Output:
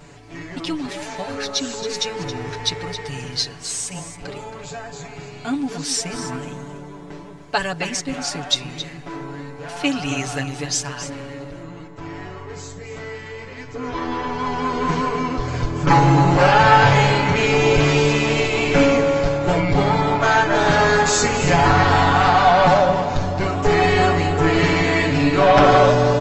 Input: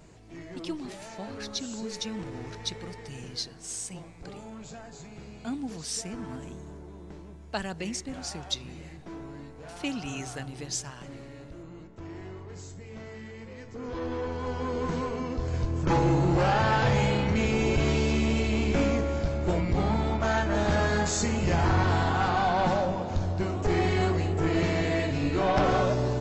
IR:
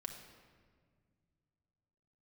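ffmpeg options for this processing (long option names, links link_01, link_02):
-af "equalizer=frequency=1800:width=0.35:gain=6,aecho=1:1:7:0.88,aecho=1:1:272:0.266,volume=5dB"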